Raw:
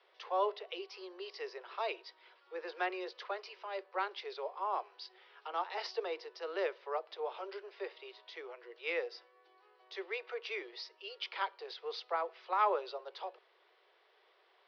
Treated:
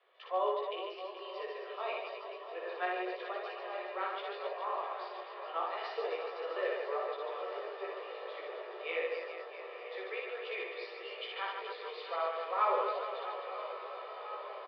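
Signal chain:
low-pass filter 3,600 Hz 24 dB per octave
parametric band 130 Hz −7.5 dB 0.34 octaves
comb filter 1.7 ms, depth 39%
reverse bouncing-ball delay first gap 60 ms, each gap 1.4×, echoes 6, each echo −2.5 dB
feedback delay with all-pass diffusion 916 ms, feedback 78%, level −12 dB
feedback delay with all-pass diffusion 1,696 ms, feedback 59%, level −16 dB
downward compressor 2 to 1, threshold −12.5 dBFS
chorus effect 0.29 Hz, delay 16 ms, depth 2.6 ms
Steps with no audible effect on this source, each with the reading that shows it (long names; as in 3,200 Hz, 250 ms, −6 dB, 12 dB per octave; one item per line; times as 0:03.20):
parametric band 130 Hz: nothing at its input below 300 Hz
downward compressor, threshold −12.5 dBFS: peak of its input −16.5 dBFS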